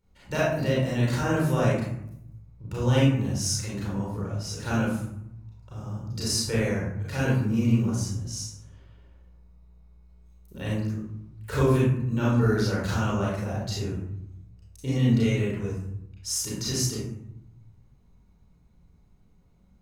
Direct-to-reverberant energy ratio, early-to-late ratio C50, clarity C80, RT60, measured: -7.5 dB, -0.5 dB, 4.0 dB, 0.75 s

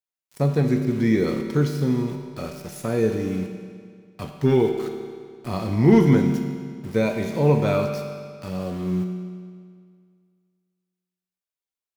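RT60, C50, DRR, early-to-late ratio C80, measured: 2.0 s, 5.5 dB, 3.5 dB, 6.5 dB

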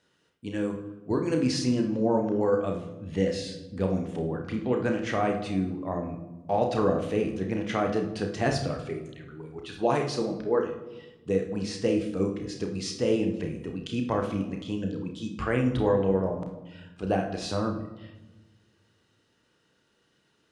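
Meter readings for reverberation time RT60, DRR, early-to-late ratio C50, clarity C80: 1.1 s, 3.0 dB, 7.0 dB, 11.0 dB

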